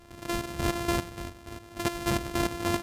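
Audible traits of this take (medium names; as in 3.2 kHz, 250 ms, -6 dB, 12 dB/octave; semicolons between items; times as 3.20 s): a buzz of ramps at a fixed pitch in blocks of 128 samples; chopped level 3.4 Hz, depth 65%, duty 40%; Vorbis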